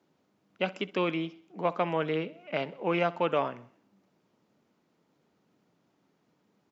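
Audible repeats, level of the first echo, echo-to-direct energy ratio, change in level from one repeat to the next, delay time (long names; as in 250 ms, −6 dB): 3, −20.0 dB, −18.5 dB, −5.5 dB, 64 ms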